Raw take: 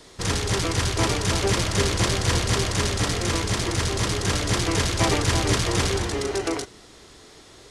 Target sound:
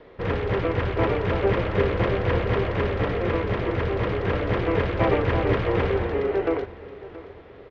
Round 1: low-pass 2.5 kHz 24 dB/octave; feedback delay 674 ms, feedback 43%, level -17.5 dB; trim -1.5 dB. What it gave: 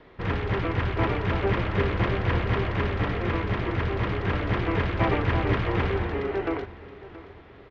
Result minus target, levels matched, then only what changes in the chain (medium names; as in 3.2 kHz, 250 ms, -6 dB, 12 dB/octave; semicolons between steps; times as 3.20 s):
500 Hz band -3.5 dB
add after low-pass: peaking EQ 500 Hz +9 dB 0.66 oct